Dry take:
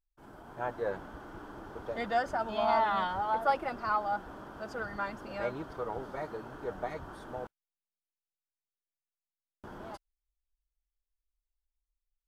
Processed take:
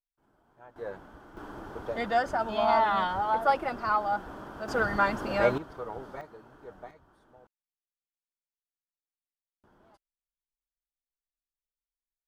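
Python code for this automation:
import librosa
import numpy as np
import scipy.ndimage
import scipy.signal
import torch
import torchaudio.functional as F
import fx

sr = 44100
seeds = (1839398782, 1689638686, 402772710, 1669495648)

y = fx.gain(x, sr, db=fx.steps((0.0, -17.0), (0.76, -4.5), (1.37, 3.5), (4.68, 10.5), (5.58, -1.5), (6.21, -9.0), (6.91, -17.0)))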